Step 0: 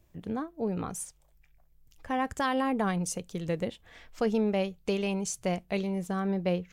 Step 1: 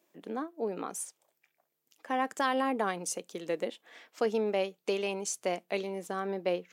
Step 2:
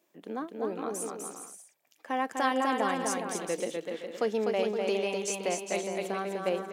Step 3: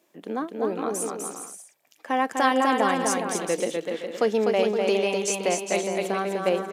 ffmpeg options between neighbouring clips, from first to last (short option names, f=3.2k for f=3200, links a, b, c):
-af "highpass=f=270:w=0.5412,highpass=f=270:w=1.3066"
-af "aecho=1:1:250|412.5|518.1|586.8|631.4:0.631|0.398|0.251|0.158|0.1"
-af "aresample=32000,aresample=44100,volume=6.5dB"